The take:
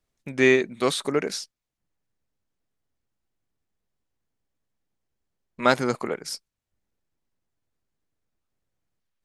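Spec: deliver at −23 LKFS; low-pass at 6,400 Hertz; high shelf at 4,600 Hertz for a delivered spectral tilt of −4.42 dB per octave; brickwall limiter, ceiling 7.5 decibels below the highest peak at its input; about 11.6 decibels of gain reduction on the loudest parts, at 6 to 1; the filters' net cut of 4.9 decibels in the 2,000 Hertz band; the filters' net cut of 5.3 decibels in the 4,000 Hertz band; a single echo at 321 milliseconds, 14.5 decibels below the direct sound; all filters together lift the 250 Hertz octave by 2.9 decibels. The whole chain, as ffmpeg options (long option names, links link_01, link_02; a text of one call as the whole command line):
ffmpeg -i in.wav -af "lowpass=6400,equalizer=frequency=250:width_type=o:gain=3.5,equalizer=frequency=2000:width_type=o:gain=-5,equalizer=frequency=4000:width_type=o:gain=-6.5,highshelf=frequency=4600:gain=4,acompressor=threshold=-25dB:ratio=6,alimiter=limit=-21dB:level=0:latency=1,aecho=1:1:321:0.188,volume=11dB" out.wav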